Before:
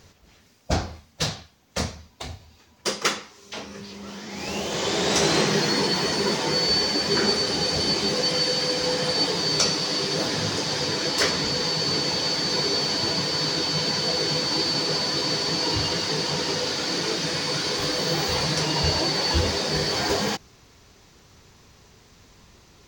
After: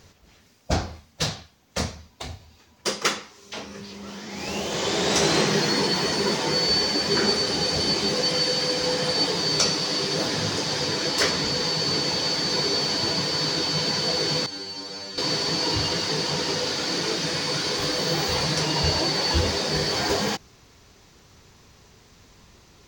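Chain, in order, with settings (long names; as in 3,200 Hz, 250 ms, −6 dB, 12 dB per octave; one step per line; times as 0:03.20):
0:14.46–0:15.18: stiff-string resonator 95 Hz, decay 0.46 s, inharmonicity 0.002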